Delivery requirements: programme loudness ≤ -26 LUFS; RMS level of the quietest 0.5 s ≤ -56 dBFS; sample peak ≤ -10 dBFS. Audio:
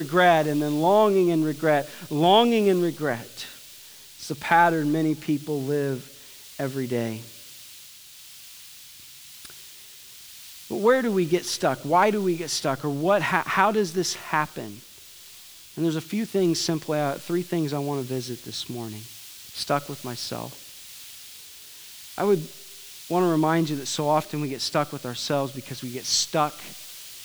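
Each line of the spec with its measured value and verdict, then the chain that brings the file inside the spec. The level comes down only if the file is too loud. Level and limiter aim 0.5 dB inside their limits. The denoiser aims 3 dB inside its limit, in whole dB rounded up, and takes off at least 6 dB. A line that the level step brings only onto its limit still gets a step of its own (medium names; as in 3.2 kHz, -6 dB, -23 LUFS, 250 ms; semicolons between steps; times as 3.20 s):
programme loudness -24.0 LUFS: fail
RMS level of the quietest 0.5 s -47 dBFS: fail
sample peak -4.5 dBFS: fail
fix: noise reduction 10 dB, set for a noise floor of -47 dBFS; trim -2.5 dB; peak limiter -10.5 dBFS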